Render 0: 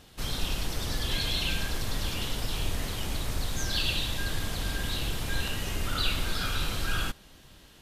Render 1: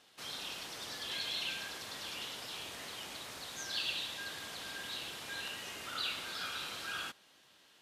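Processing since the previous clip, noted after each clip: frequency weighting A; trim -7.5 dB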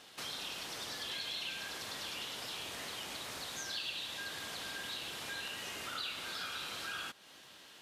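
compression 2.5:1, threshold -51 dBFS, peak gain reduction 12.5 dB; trim +8 dB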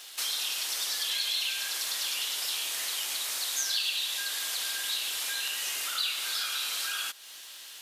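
high-pass 250 Hz 12 dB/octave; tilt EQ +4.5 dB/octave; trim +2 dB

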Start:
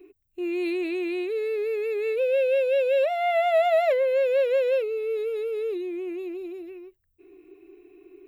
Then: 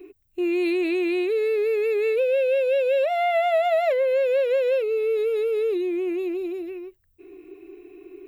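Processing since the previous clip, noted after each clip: compression 3:1, threshold -27 dBFS, peak gain reduction 7.5 dB; trim +6.5 dB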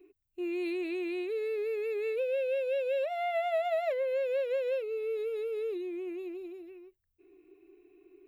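upward expansion 1.5:1, over -31 dBFS; trim -8.5 dB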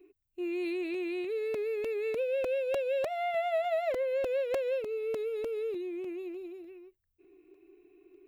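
crackling interface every 0.30 s, samples 128, repeat, from 0.34 s

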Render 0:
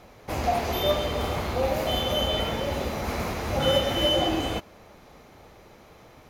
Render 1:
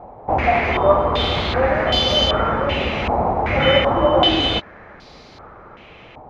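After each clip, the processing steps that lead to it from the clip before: step-sequenced low-pass 2.6 Hz 820–4600 Hz; trim +6.5 dB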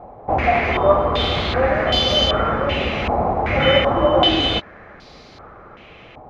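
band-stop 920 Hz, Q 13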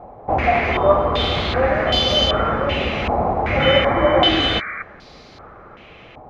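painted sound noise, 3.77–4.83 s, 1.1–2.4 kHz -29 dBFS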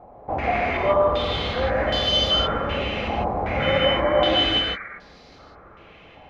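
gated-style reverb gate 180 ms rising, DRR 1 dB; trim -7.5 dB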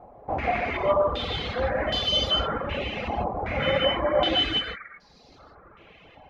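reverb removal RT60 1.1 s; trim -1.5 dB

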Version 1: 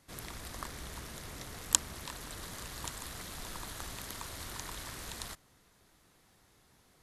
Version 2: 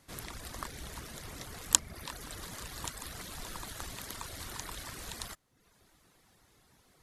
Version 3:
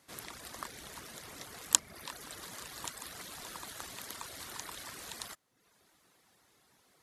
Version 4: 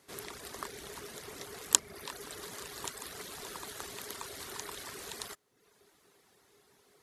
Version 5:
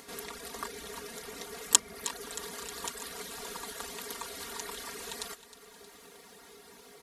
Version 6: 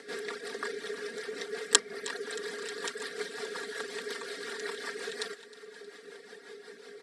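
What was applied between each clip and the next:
reverb removal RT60 0.66 s; trim +2 dB
high-pass 280 Hz 6 dB/octave; trim -1 dB
peaking EQ 410 Hz +13 dB 0.24 oct; trim +1 dB
comb 4.3 ms, depth 85%; upward compressor, threshold -43 dBFS; feedback delay 313 ms, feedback 54%, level -15 dB
rotary cabinet horn 5.5 Hz; cabinet simulation 260–8000 Hz, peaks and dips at 430 Hz +7 dB, 670 Hz -4 dB, 1 kHz -8 dB, 1.7 kHz +9 dB, 2.8 kHz -4 dB, 6.6 kHz -10 dB; trim +5 dB

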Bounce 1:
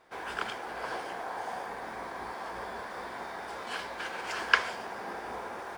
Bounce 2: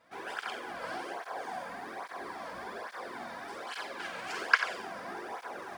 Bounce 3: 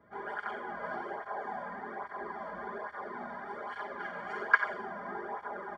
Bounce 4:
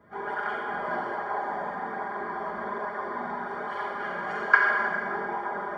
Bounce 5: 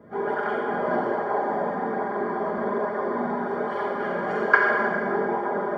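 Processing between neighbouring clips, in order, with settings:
band-stop 900 Hz, Q 15; on a send: flutter echo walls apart 7.8 m, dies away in 0.46 s; on the sum: cancelling through-zero flanger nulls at 1.2 Hz, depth 2.8 ms
comb 4.9 ms, depth 98%; band noise 55–510 Hz -66 dBFS; Savitzky-Golay filter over 41 samples; trim -1.5 dB
plate-style reverb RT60 2 s, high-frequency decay 1×, DRR -0.5 dB; trim +4.5 dB
graphic EQ 125/250/500 Hz +7/+9/+10 dB

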